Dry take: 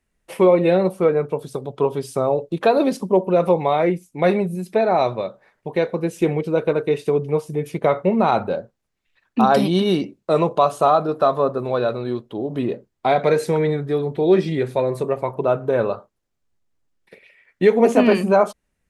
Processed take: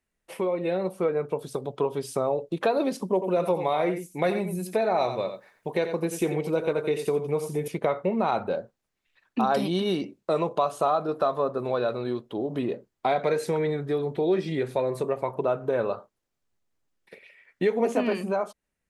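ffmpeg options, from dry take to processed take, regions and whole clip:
-filter_complex "[0:a]asettb=1/sr,asplit=3[s0][s1][s2];[s0]atrim=end=3.134[s3];[s1]atrim=start=3.13:end=7.68,asetpts=PTS-STARTPTS,afade=t=in:d=0.004:c=qsin,afade=t=out:st=4.546:d=0.004:c=qsin,highshelf=f=6900:g=11,aecho=1:1:87:0.316,atrim=end_sample=200655[s4];[s2]atrim=start=7.676[s5];[s3][s4]acrossfade=d=0.004:c1=hsin:c2=qsin[s6];[s6][s5]acrossfade=d=0.004:c1=qsin:c2=hsin,acompressor=threshold=0.0708:ratio=2,lowshelf=f=180:g=-6,dynaudnorm=f=150:g=11:m=1.78,volume=0.501"

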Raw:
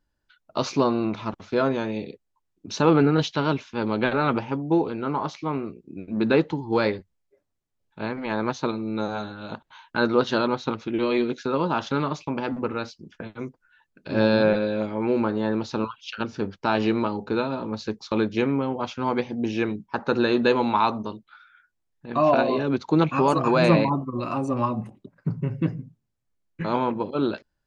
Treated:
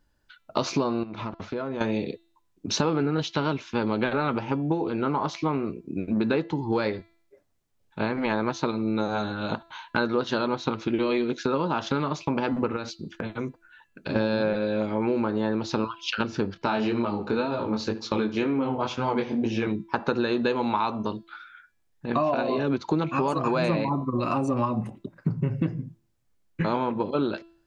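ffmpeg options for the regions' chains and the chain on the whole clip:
-filter_complex "[0:a]asettb=1/sr,asplit=3[s0][s1][s2];[s0]atrim=end=1.034[s3];[s1]atrim=start=1.03:end=1.81,asetpts=PTS-STARTPTS,afade=t=in:d=0.004:c=qsin,afade=t=out:st=0.776:d=0.004:c=qsin,highshelf=f=4400:g=-11.5,acompressor=threshold=0.0178:ratio=6:attack=3.2:release=140:knee=1:detection=peak[s4];[s2]atrim=start=1.806[s5];[s3][s4]acrossfade=d=0.004:c1=hsin:c2=qsin[s6];[s6][s5]acrossfade=d=0.004:c1=qsin:c2=hsin,asettb=1/sr,asplit=3[s7][s8][s9];[s7]atrim=end=12.764[s10];[s8]atrim=start=12.76:end=14.16,asetpts=PTS-STARTPTS,afade=t=in:d=0.004:c=qsin,afade=t=out:st=1.396:d=0.004:c=qsin,bandreject=f=5200:w=12,acompressor=threshold=0.0224:ratio=4:attack=3.2:release=140:knee=1:detection=peak[s11];[s9]atrim=start=14.156[s12];[s10][s11]acrossfade=d=0.004:c1=hsin:c2=qsin[s13];[s13][s12]acrossfade=d=0.004:c1=qsin:c2=hsin,asettb=1/sr,asplit=3[s14][s15][s16];[s14]atrim=end=16.544[s17];[s15]atrim=start=16.54:end=19.67,asetpts=PTS-STARTPTS,afade=t=in:d=0.004:c=qsin,afade=t=out:st=3.126:d=0.004:c=qsin,flanger=delay=17:depth=6.2:speed=2,asplit=2[s18][s19];[s19]adelay=73,lowpass=f=4500:p=1,volume=0.141,asplit=2[s20][s21];[s21]adelay=73,lowpass=f=4500:p=1,volume=0.41,asplit=2[s22][s23];[s23]adelay=73,lowpass=f=4500:p=1,volume=0.41[s24];[s18][s20][s22][s24]amix=inputs=4:normalize=0,atrim=end_sample=138033[s25];[s16]atrim=start=19.666[s26];[s17][s25]acrossfade=d=0.004:c1=hsin:c2=qsin[s27];[s27][s26]acrossfade=d=0.004:c1=qsin:c2=hsin,acompressor=threshold=0.0355:ratio=6,bandreject=f=335.3:t=h:w=4,bandreject=f=670.6:t=h:w=4,bandreject=f=1005.9:t=h:w=4,bandreject=f=1341.2:t=h:w=4,bandreject=f=1676.5:t=h:w=4,bandreject=f=2011.8:t=h:w=4,bandreject=f=2347.1:t=h:w=4,bandreject=f=2682.4:t=h:w=4,bandreject=f=3017.7:t=h:w=4,bandreject=f=3353:t=h:w=4,bandreject=f=3688.3:t=h:w=4,bandreject=f=4023.6:t=h:w=4,bandreject=f=4358.9:t=h:w=4,bandreject=f=4694.2:t=h:w=4,bandreject=f=5029.5:t=h:w=4,volume=2.24"

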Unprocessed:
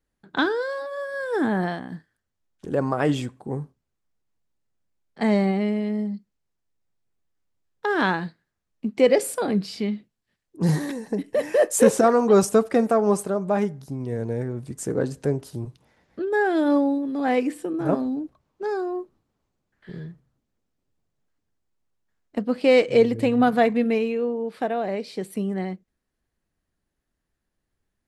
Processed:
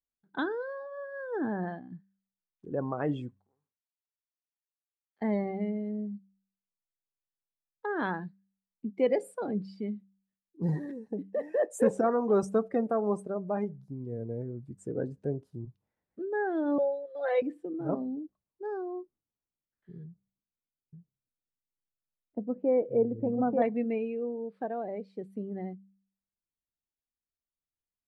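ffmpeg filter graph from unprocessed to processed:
-filter_complex "[0:a]asettb=1/sr,asplit=3[s0][s1][s2];[s0]atrim=end=3.394[s3];[s1]atrim=start=3.39:end=5.22,asetpts=PTS-STARTPTS,afade=t=in:d=0.004:c=qsin,afade=t=out:st=1.826:d=0.004:c=qsin,acompressor=threshold=0.0158:ratio=10:attack=3.2:release=140:knee=1:detection=peak,bandpass=f=3200:t=q:w=0.55[s4];[s2]atrim=start=5.216[s5];[s3][s4]acrossfade=d=0.004:c1=hsin:c2=qsin[s6];[s6][s5]acrossfade=d=0.004:c1=qsin:c2=hsin,asettb=1/sr,asplit=3[s7][s8][s9];[s7]atrim=end=16.784[s10];[s8]atrim=start=16.78:end=17.42,asetpts=PTS-STARTPTS,afade=t=in:d=0.004:c=qsin,afade=t=out:st=0.636:d=0.004:c=qsin,highpass=f=500:w=0.5412,highpass=f=500:w=1.3066,equalizer=f=570:t=q:w=4:g=9,equalizer=f=890:t=q:w=4:g=-7,equalizer=f=1400:t=q:w=4:g=4,equalizer=f=3800:t=q:w=4:g=9,lowpass=f=5800:w=0.5412,lowpass=f=5800:w=1.3066,aecho=1:1:5.8:0.9,atrim=end_sample=28224[s11];[s9]atrim=start=17.416[s12];[s10][s11]acrossfade=d=0.004:c1=hsin:c2=qsin[s13];[s13][s12]acrossfade=d=0.004:c1=qsin:c2=hsin,asettb=1/sr,asplit=3[s14][s15][s16];[s14]atrim=end=20.044[s17];[s15]atrim=start=20.04:end=23.62,asetpts=PTS-STARTPTS,afade=t=in:d=0.004:c=qsin,afade=t=out:st=3.576:d=0.004:c=qsin,lowpass=1000,aecho=1:1:888:0.708,atrim=end_sample=157878[s18];[s16]atrim=start=23.616[s19];[s17][s18]acrossfade=d=0.004:c1=hsin:c2=qsin[s20];[s20][s19]acrossfade=d=0.004:c1=qsin:c2=hsin,afftdn=nr=15:nf=-31,highshelf=f=3000:g=-10.5,bandreject=f=97.08:t=h:w=4,bandreject=f=194.16:t=h:w=4,volume=0.376"

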